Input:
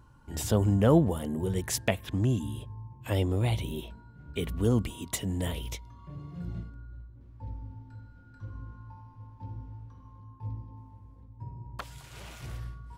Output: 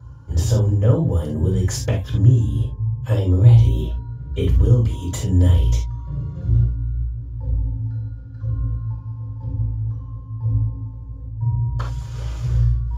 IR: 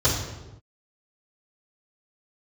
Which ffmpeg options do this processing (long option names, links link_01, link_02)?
-filter_complex "[0:a]acompressor=threshold=-28dB:ratio=5[link_01];[1:a]atrim=start_sample=2205,atrim=end_sample=3969[link_02];[link_01][link_02]afir=irnorm=-1:irlink=0,volume=-9dB"